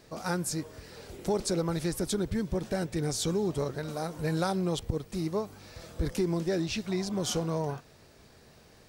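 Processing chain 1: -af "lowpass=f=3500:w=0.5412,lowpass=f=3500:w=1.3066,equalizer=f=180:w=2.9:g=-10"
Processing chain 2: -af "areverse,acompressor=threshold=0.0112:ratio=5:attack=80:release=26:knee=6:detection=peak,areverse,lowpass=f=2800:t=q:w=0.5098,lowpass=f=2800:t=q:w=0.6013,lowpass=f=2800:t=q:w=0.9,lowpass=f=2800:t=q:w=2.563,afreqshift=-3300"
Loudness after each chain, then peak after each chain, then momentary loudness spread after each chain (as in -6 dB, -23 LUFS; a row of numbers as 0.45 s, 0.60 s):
-34.0 LUFS, -32.5 LUFS; -18.5 dBFS, -21.5 dBFS; 9 LU, 7 LU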